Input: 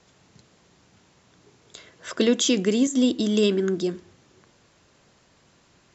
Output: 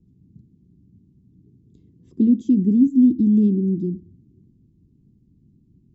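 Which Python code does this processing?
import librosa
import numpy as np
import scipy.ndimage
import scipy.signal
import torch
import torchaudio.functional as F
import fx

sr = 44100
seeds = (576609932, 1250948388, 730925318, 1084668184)

y = scipy.signal.sosfilt(scipy.signal.cheby2(4, 40, 550.0, 'lowpass', fs=sr, output='sos'), x)
y = y * librosa.db_to_amplitude(8.5)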